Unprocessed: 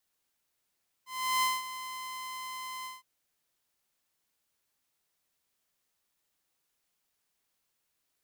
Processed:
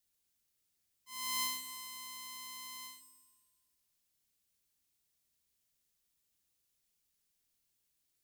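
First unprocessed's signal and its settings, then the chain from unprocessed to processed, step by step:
ADSR saw 1.03 kHz, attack 360 ms, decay 201 ms, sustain -13.5 dB, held 1.79 s, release 174 ms -22 dBFS
octave divider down 2 oct, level -6 dB; peaking EQ 990 Hz -11 dB 2.8 oct; Schroeder reverb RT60 1.8 s, combs from 27 ms, DRR 9 dB

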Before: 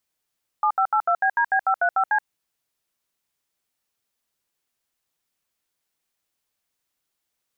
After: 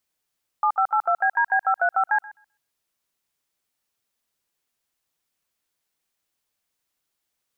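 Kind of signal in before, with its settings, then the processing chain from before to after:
DTMF "7582BDB535C", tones 76 ms, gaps 72 ms, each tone -19.5 dBFS
thinning echo 129 ms, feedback 16%, high-pass 830 Hz, level -18 dB

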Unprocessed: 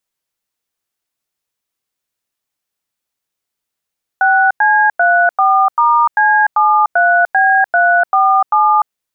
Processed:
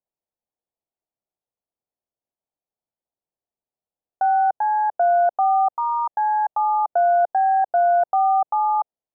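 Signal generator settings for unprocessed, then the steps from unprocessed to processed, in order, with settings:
DTMF "6C34*C73B347", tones 297 ms, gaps 95 ms, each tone -10.5 dBFS
four-pole ladder low-pass 890 Hz, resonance 40%

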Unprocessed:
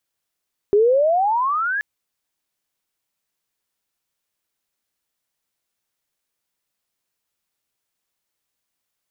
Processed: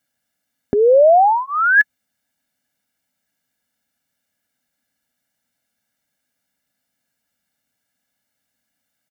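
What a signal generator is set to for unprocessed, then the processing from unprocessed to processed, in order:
gliding synth tone sine, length 1.08 s, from 396 Hz, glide +25.5 st, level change -9 dB, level -11 dB
high-pass 44 Hz; comb 1.4 ms, depth 98%; small resonant body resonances 260/1700 Hz, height 16 dB, ringing for 30 ms

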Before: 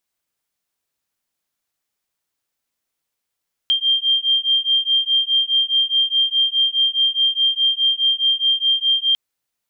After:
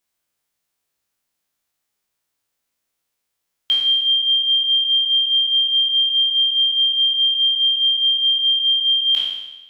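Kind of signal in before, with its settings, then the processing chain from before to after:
beating tones 3.18 kHz, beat 4.8 Hz, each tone -18 dBFS 5.45 s
spectral sustain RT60 1.07 s

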